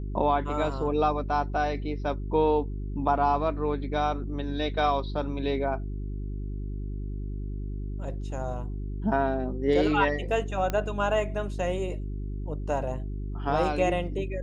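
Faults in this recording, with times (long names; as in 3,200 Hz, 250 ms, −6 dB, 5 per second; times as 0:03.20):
mains hum 50 Hz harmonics 8 −33 dBFS
0:10.70: click −15 dBFS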